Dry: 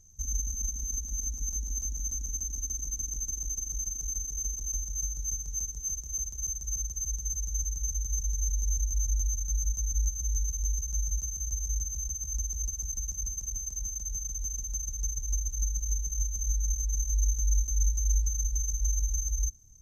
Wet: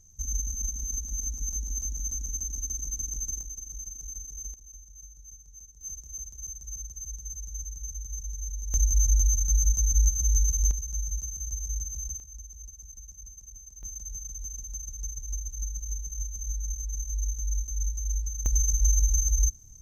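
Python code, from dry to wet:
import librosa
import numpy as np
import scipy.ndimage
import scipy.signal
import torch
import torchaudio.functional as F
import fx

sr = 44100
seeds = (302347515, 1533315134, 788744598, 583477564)

y = fx.gain(x, sr, db=fx.steps((0.0, 1.0), (3.41, -5.5), (4.54, -15.0), (5.81, -5.5), (8.74, 6.5), (10.71, -1.0), (12.2, -11.5), (13.83, -3.5), (18.46, 6.0)))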